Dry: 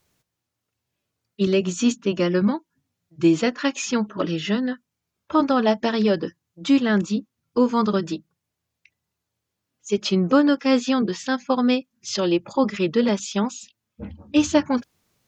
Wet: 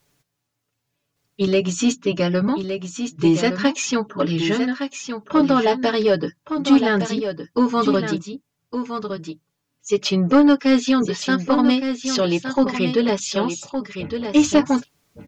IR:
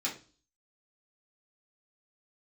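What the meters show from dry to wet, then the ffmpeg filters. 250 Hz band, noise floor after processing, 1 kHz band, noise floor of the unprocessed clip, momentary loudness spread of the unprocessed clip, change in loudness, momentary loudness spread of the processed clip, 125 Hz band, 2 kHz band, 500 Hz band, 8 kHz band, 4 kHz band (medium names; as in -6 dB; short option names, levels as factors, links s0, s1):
+2.5 dB, -77 dBFS, +2.5 dB, -82 dBFS, 10 LU, +2.0 dB, 12 LU, +3.0 dB, +3.5 dB, +2.5 dB, no reading, +3.5 dB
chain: -af "aecho=1:1:7:0.58,acontrast=77,aecho=1:1:1164:0.398,volume=0.596"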